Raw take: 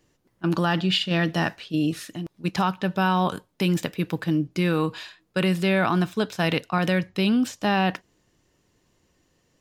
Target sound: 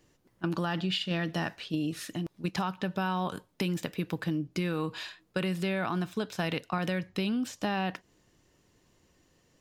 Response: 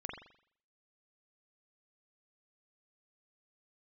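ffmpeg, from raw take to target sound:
-af "acompressor=threshold=-29dB:ratio=4"

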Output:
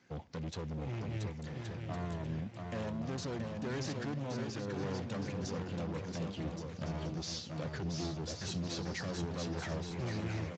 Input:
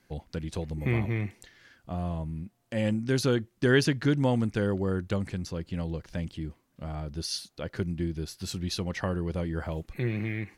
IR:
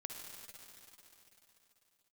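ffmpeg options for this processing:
-filter_complex "[0:a]asplit=3[link_01][link_02][link_03];[link_01]afade=type=out:start_time=6.46:duration=0.02[link_04];[link_02]acontrast=23,afade=type=in:start_time=6.46:duration=0.02,afade=type=out:start_time=7.09:duration=0.02[link_05];[link_03]afade=type=in:start_time=7.09:duration=0.02[link_06];[link_04][link_05][link_06]amix=inputs=3:normalize=0,asplit=3[link_07][link_08][link_09];[link_07]afade=type=out:start_time=7.68:duration=0.02[link_10];[link_08]equalizer=frequency=5200:width=5.3:gain=4.5,afade=type=in:start_time=7.68:duration=0.02,afade=type=out:start_time=8.45:duration=0.02[link_11];[link_09]afade=type=in:start_time=8.45:duration=0.02[link_12];[link_10][link_11][link_12]amix=inputs=3:normalize=0,alimiter=limit=-21.5dB:level=0:latency=1:release=300,asettb=1/sr,asplit=3[link_13][link_14][link_15];[link_13]atrim=end=4.144[link_16];[link_14]atrim=start=4.14:end=4.82,asetpts=PTS-STARTPTS,afade=type=in:duration=0.004:curve=qsin,afade=type=out:start_time=0.676:duration=0.004:curve=qsin,acompressor=threshold=-34dB:ratio=4[link_17];[link_15]atrim=start=4.816[link_18];[link_16][link_17]acrossfade=duration=0.004:curve1=hsin:curve2=qsin[link_19];[link_19][link_18]acrossfade=duration=0.004:curve1=qsin:curve2=hsin,asoftclip=type=hard:threshold=-37.5dB,aecho=1:1:680|1122|1409|1596|1717:0.631|0.398|0.251|0.158|0.1,asplit=2[link_20][link_21];[1:a]atrim=start_sample=2205,adelay=63[link_22];[link_21][link_22]afir=irnorm=-1:irlink=0,volume=-18.5dB[link_23];[link_20][link_23]amix=inputs=2:normalize=0" -ar 16000 -c:a libspeex -b:a 17k

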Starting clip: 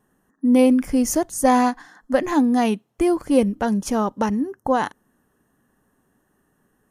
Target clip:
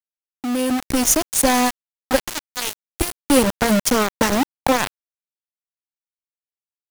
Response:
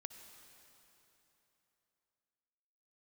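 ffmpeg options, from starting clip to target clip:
-filter_complex "[0:a]acrossover=split=130|3000[link_01][link_02][link_03];[link_02]acompressor=threshold=-36dB:ratio=2[link_04];[link_01][link_04][link_03]amix=inputs=3:normalize=0,asplit=3[link_05][link_06][link_07];[link_05]afade=type=out:start_time=2.29:duration=0.02[link_08];[link_06]equalizer=frequency=250:width_type=o:width=1:gain=-10,equalizer=frequency=1000:width_type=o:width=1:gain=-7,equalizer=frequency=4000:width_type=o:width=1:gain=4,afade=type=in:start_time=2.29:duration=0.02,afade=type=out:start_time=3.15:duration=0.02[link_09];[link_07]afade=type=in:start_time=3.15:duration=0.02[link_10];[link_08][link_09][link_10]amix=inputs=3:normalize=0,aecho=1:1:274:0.0794,aeval=exprs='val(0)*gte(abs(val(0)),0.0473)':channel_layout=same,dynaudnorm=framelen=120:gausssize=13:maxgain=13.5dB,volume=1dB"

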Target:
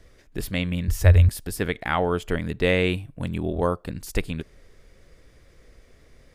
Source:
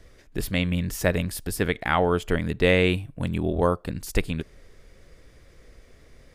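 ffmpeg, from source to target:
ffmpeg -i in.wav -filter_complex "[0:a]asettb=1/sr,asplit=3[link_01][link_02][link_03];[link_01]atrim=end=0.884[link_04];[link_02]atrim=start=0.88:end=1.29,asetpts=PTS-STARTPTS,afade=type=in:duration=0.004:curve=qsin,afade=type=out:start_time=0.406:duration=0.004:curve=qsin,lowshelf=frequency=120:width_type=q:width=3:gain=12.5[link_05];[link_03]atrim=start=1.286[link_06];[link_04][link_05]acrossfade=duration=0.004:curve1=hsin:curve2=qsin[link_07];[link_07][link_06]acrossfade=duration=0.004:curve1=qsin:curve2=hsin,volume=-1.5dB" out.wav

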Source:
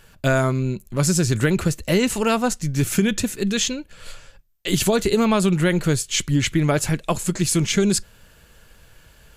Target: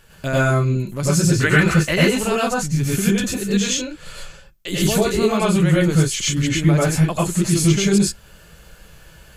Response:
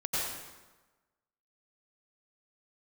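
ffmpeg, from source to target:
-filter_complex "[0:a]asettb=1/sr,asplit=3[link_01][link_02][link_03];[link_01]atrim=end=1.404[link_04];[link_02]atrim=start=1.4:end=1.96,asetpts=PTS-STARTPTS,afade=type=in:duration=0.004:curve=qsin,afade=type=out:start_time=0.556:duration=0.004:curve=qsin,equalizer=frequency=1800:width_type=o:width=2.1:gain=12[link_05];[link_03]atrim=start=1.956[link_06];[link_04][link_05]acrossfade=duration=0.004:curve1=hsin:curve2=qsin[link_07];[link_07][link_06]acrossfade=duration=0.004:curve1=qsin:curve2=hsin,asplit=2[link_08][link_09];[link_09]acompressor=threshold=-31dB:ratio=6,volume=-1dB[link_10];[link_08][link_10]amix=inputs=2:normalize=0[link_11];[1:a]atrim=start_sample=2205,atrim=end_sample=6174[link_12];[link_11][link_12]afir=irnorm=-1:irlink=0,volume=-5dB"

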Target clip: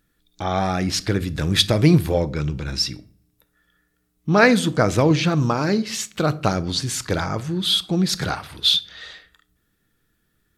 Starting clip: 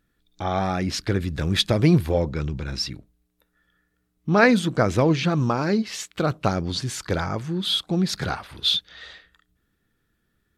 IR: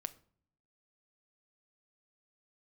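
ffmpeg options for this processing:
-filter_complex "[0:a]asplit=2[link_01][link_02];[1:a]atrim=start_sample=2205,highshelf=frequency=4500:gain=8[link_03];[link_02][link_03]afir=irnorm=-1:irlink=0,volume=13dB[link_04];[link_01][link_04]amix=inputs=2:normalize=0,volume=-11dB"

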